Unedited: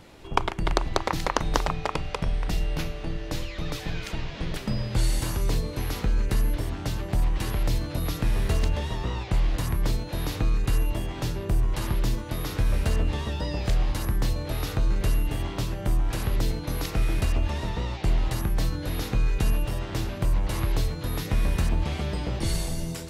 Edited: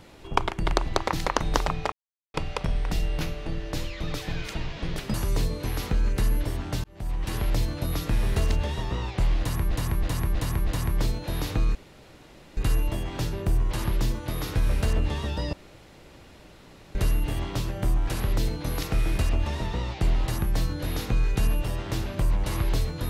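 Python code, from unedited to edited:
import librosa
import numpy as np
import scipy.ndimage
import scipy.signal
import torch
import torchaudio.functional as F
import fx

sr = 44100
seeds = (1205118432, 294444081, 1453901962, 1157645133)

y = fx.edit(x, sr, fx.insert_silence(at_s=1.92, length_s=0.42),
    fx.cut(start_s=4.72, length_s=0.55),
    fx.fade_in_span(start_s=6.97, length_s=0.54),
    fx.repeat(start_s=9.52, length_s=0.32, count=5),
    fx.insert_room_tone(at_s=10.6, length_s=0.82),
    fx.room_tone_fill(start_s=13.56, length_s=1.42), tone=tone)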